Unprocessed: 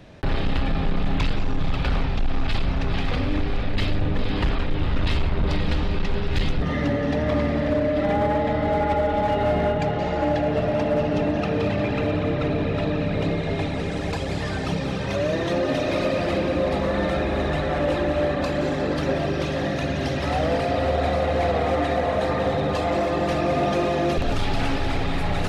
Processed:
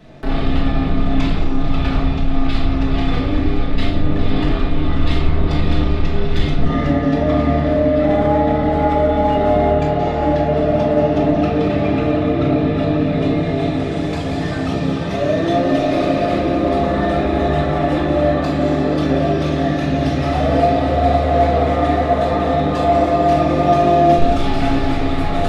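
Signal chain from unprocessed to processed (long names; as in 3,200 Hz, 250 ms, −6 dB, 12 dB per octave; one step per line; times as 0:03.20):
hollow resonant body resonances 320/690/1,200/3,500 Hz, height 8 dB
convolution reverb RT60 0.55 s, pre-delay 5 ms, DRR −4.5 dB
level −3.5 dB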